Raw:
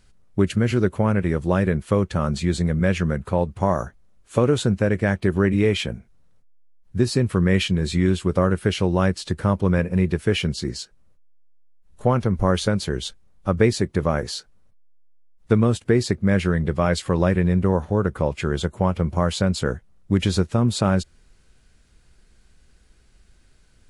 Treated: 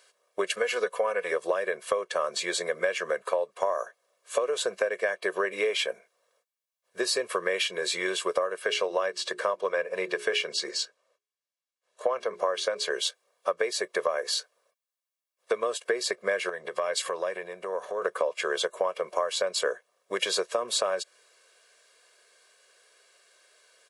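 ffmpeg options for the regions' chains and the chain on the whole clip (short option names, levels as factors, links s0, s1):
-filter_complex "[0:a]asettb=1/sr,asplit=3[s0][s1][s2];[s0]atrim=end=0.564[s3];[s1]atrim=start=0.56:end=1.32,asetpts=PTS-STARTPTS,afade=t=in:d=0.004:c=qsin,afade=t=out:st=0.756:d=0.004:c=qsin,equalizer=f=270:t=o:w=0.43:g=-12,aecho=1:1:4.1:0.63,atrim=end_sample=33516[s4];[s2]atrim=start=1.316[s5];[s3][s4]acrossfade=d=0.004:c1=hsin:c2=qsin[s6];[s6][s5]acrossfade=d=0.004:c1=qsin:c2=hsin,asettb=1/sr,asplit=3[s7][s8][s9];[s7]atrim=end=8.624[s10];[s8]atrim=start=8.62:end=12.91,asetpts=PTS-STARTPTS,afade=t=in:d=0.004:c=qsin,afade=t=out:st=4.286:d=0.004:c=qsin,lowpass=7800,bandreject=f=60:t=h:w=6,bandreject=f=120:t=h:w=6,bandreject=f=180:t=h:w=6,bandreject=f=240:t=h:w=6,bandreject=f=300:t=h:w=6,bandreject=f=360:t=h:w=6,bandreject=f=420:t=h:w=6[s11];[s9]atrim=start=12.906[s12];[s10][s11]acrossfade=d=0.004:c1=hsin:c2=qsin[s13];[s13][s12]acrossfade=d=0.004:c1=qsin:c2=hsin,asettb=1/sr,asplit=3[s14][s15][s16];[s14]atrim=end=16.494[s17];[s15]atrim=start=16.49:end=18.02,asetpts=PTS-STARTPTS,afade=t=in:d=0.004:c=qsin,afade=t=out:st=1.526:d=0.004:c=qsin,bass=f=250:g=4,treble=f=4000:g=2,acompressor=threshold=0.0794:ratio=12:attack=3.2:release=140:knee=1:detection=peak[s18];[s16]atrim=start=18.016[s19];[s17][s18]acrossfade=d=0.004:c1=hsin:c2=qsin[s20];[s20][s19]acrossfade=d=0.004:c1=qsin:c2=hsin,highpass=f=460:w=0.5412,highpass=f=460:w=1.3066,aecho=1:1:1.8:0.72,acompressor=threshold=0.0501:ratio=12,volume=1.41"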